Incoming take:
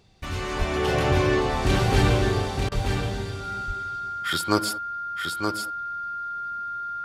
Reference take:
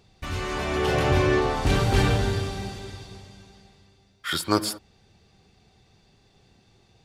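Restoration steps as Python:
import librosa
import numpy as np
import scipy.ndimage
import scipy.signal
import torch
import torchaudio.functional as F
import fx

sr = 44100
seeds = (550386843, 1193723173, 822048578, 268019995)

y = fx.notch(x, sr, hz=1400.0, q=30.0)
y = fx.fix_deplosive(y, sr, at_s=(0.58, 2.74))
y = fx.fix_interpolate(y, sr, at_s=(2.69,), length_ms=26.0)
y = fx.fix_echo_inverse(y, sr, delay_ms=923, level_db=-5.5)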